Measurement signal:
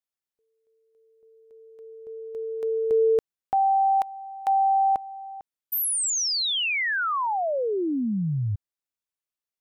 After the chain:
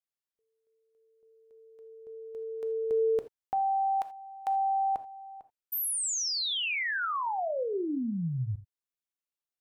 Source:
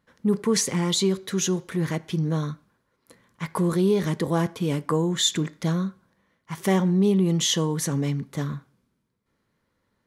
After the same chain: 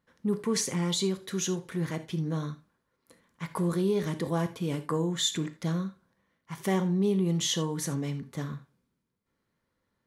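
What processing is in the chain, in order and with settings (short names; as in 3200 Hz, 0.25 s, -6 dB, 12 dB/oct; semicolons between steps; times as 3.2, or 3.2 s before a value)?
non-linear reverb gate 0.1 s flat, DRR 10.5 dB; gain -6 dB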